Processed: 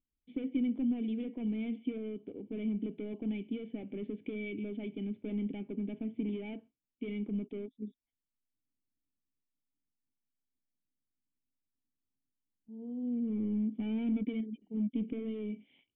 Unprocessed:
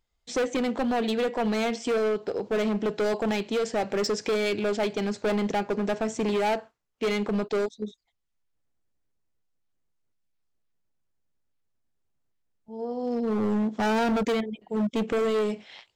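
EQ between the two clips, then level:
formant resonators in series i
high-frequency loss of the air 250 metres
0.0 dB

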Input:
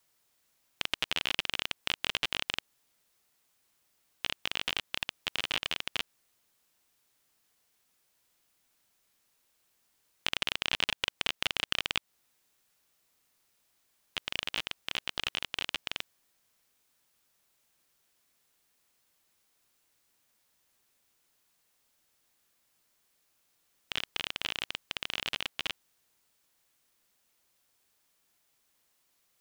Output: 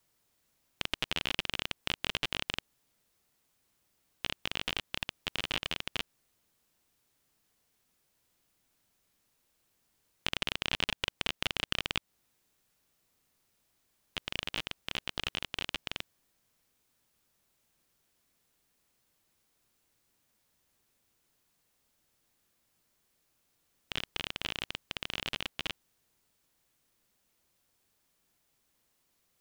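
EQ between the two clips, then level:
low-shelf EQ 420 Hz +8.5 dB
−2.5 dB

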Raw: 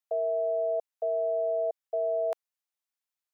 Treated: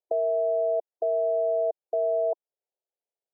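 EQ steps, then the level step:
linear-phase brick-wall band-pass 340–1,000 Hz
dynamic equaliser 500 Hz, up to −8 dB, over −44 dBFS, Q 1.5
low shelf with overshoot 790 Hz +12 dB, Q 1.5
−3.0 dB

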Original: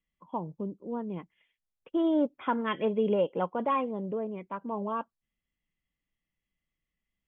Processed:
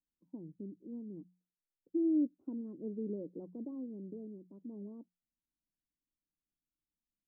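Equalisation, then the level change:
transistor ladder low-pass 350 Hz, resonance 60%
mains-hum notches 60/120/180 Hz
−2.5 dB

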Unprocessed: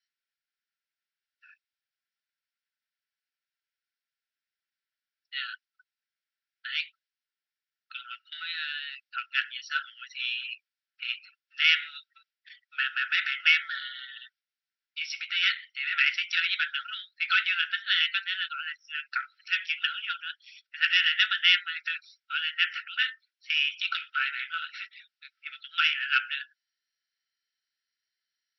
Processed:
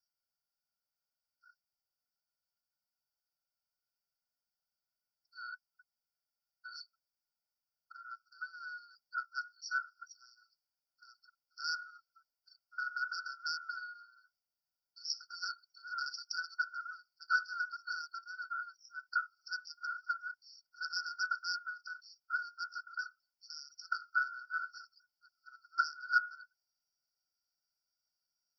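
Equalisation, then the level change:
linear-phase brick-wall band-stop 1,500–4,400 Hz
phaser with its sweep stopped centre 1,800 Hz, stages 8
+4.0 dB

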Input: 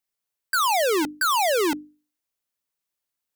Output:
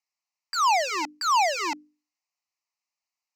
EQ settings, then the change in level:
band-pass filter 480–7,600 Hz
phaser with its sweep stopped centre 2,300 Hz, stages 8
+2.5 dB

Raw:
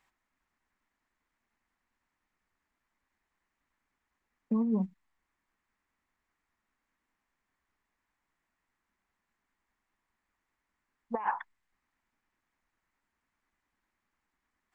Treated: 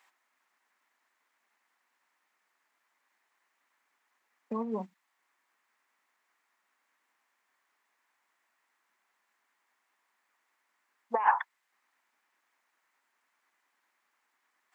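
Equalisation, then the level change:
high-pass filter 540 Hz 12 dB per octave
+7.5 dB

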